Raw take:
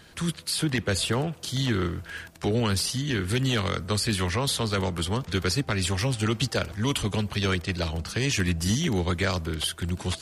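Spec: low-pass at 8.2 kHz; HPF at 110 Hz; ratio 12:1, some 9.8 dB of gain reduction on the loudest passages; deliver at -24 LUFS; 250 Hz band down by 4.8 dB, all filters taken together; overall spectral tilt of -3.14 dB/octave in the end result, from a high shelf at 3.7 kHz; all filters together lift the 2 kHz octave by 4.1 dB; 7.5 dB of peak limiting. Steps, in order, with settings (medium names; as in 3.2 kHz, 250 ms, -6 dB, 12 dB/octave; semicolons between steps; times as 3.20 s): high-pass 110 Hz; low-pass 8.2 kHz; peaking EQ 250 Hz -6.5 dB; peaking EQ 2 kHz +3.5 dB; treble shelf 3.7 kHz +6.5 dB; compression 12:1, threshold -30 dBFS; trim +10.5 dB; peak limiter -13 dBFS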